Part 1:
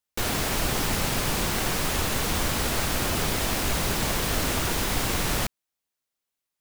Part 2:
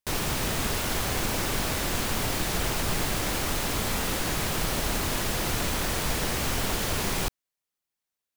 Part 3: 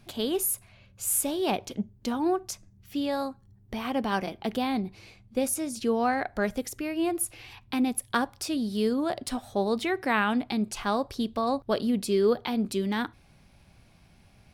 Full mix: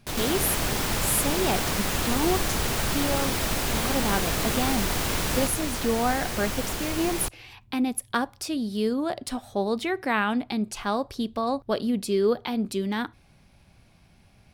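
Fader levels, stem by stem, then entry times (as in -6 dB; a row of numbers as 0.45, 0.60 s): -2.5, -3.0, +0.5 dB; 0.00, 0.00, 0.00 s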